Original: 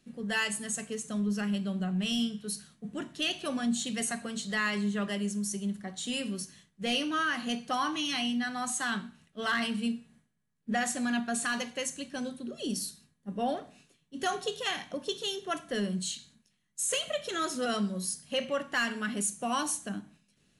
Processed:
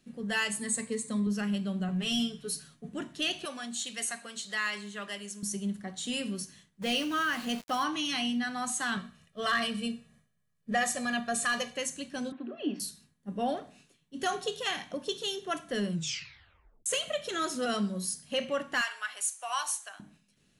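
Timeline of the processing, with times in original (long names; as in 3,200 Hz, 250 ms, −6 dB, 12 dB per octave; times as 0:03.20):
0:00.61–0:01.27: EQ curve with evenly spaced ripples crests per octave 0.97, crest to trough 11 dB
0:01.88–0:02.89: comb filter 7.2 ms, depth 68%
0:03.45–0:05.43: high-pass filter 1,000 Hz 6 dB per octave
0:06.82–0:07.84: centre clipping without the shift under −41 dBFS
0:08.97–0:11.77: comb filter 1.7 ms
0:12.32–0:12.80: loudspeaker in its box 280–2,700 Hz, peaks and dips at 300 Hz +10 dB, 500 Hz −6 dB, 710 Hz +9 dB, 1,100 Hz +5 dB, 1,700 Hz +5 dB, 2,600 Hz +5 dB
0:15.90: tape stop 0.96 s
0:18.81–0:20.00: high-pass filter 770 Hz 24 dB per octave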